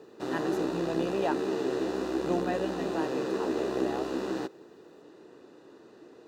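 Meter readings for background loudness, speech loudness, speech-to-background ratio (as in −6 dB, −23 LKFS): −32.0 LKFS, −36.5 LKFS, −4.5 dB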